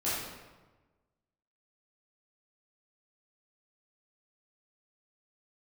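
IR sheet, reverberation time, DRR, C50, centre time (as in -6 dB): 1.2 s, -11.0 dB, -1.5 dB, 87 ms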